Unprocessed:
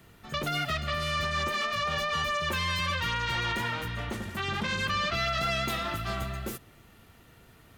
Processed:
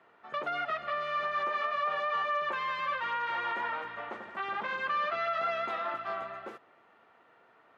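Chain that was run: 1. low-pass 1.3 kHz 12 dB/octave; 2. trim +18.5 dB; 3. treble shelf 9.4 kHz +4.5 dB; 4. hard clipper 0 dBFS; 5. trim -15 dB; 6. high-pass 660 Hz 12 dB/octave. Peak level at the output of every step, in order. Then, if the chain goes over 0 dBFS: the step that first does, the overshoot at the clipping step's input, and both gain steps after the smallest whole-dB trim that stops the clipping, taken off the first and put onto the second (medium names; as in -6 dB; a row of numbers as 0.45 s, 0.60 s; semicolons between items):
-22.0 dBFS, -3.5 dBFS, -3.5 dBFS, -3.5 dBFS, -18.5 dBFS, -21.0 dBFS; nothing clips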